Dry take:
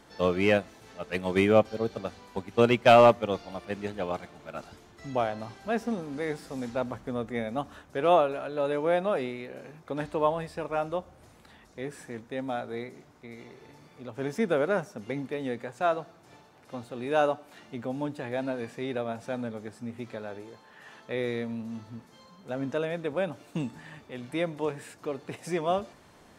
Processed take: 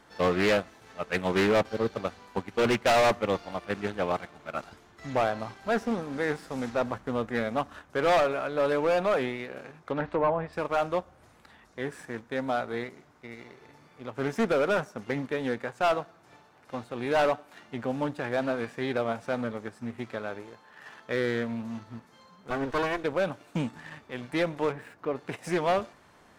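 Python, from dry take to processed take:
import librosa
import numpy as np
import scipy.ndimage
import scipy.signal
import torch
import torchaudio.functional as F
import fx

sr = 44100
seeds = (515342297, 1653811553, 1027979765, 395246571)

y = fx.lower_of_two(x, sr, delay_ms=2.7, at=(22.5, 23.04))
y = fx.peak_eq(y, sr, hz=1400.0, db=5.5, octaves=1.7)
y = fx.leveller(y, sr, passes=1)
y = np.clip(y, -10.0 ** (-17.5 / 20.0), 10.0 ** (-17.5 / 20.0))
y = fx.env_lowpass_down(y, sr, base_hz=1300.0, full_db=-21.5, at=(9.64, 10.53))
y = fx.peak_eq(y, sr, hz=8000.0, db=-14.0, octaves=2.1, at=(24.71, 25.15), fade=0.02)
y = fx.doppler_dist(y, sr, depth_ms=0.22)
y = F.gain(torch.from_numpy(y), -2.0).numpy()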